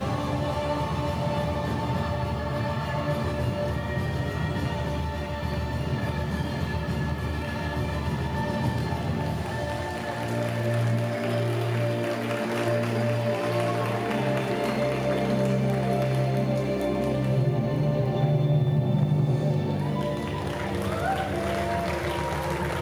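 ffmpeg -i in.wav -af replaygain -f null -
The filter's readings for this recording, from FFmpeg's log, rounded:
track_gain = +10.0 dB
track_peak = 0.199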